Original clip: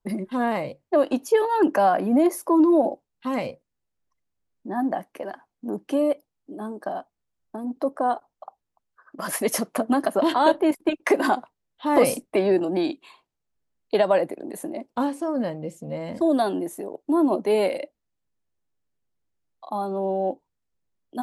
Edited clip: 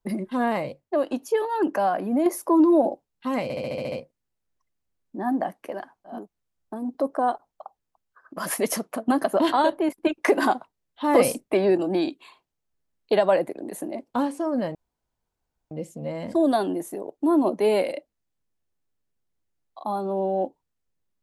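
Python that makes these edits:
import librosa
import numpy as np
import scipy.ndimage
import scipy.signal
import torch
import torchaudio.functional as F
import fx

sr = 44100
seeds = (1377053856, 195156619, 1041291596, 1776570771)

y = fx.edit(x, sr, fx.clip_gain(start_s=0.8, length_s=1.46, db=-4.0),
    fx.stutter(start_s=3.43, slice_s=0.07, count=8),
    fx.cut(start_s=5.67, length_s=1.31, crossfade_s=0.24),
    fx.fade_out_to(start_s=9.4, length_s=0.5, floor_db=-8.5),
    fx.clip_gain(start_s=10.44, length_s=0.4, db=-3.5),
    fx.insert_room_tone(at_s=15.57, length_s=0.96), tone=tone)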